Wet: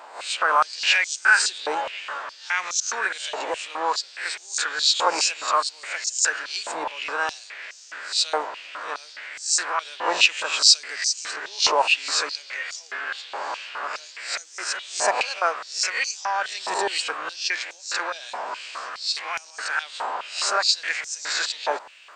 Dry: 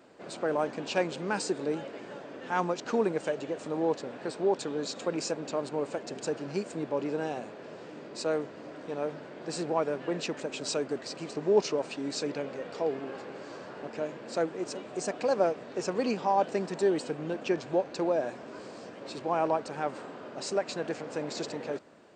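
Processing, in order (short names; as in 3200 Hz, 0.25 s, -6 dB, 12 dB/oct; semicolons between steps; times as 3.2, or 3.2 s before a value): spectral swells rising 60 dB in 0.37 s; maximiser +18.5 dB; stepped high-pass 4.8 Hz 900–6100 Hz; gain -7.5 dB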